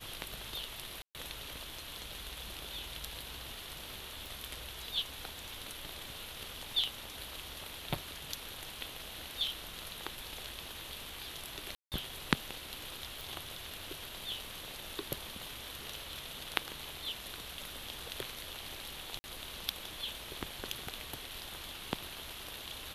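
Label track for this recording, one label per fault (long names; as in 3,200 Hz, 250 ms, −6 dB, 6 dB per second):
1.020000	1.150000	drop-out 128 ms
4.260000	4.260000	click
11.750000	11.920000	drop-out 168 ms
13.210000	13.210000	click
19.190000	19.240000	drop-out 50 ms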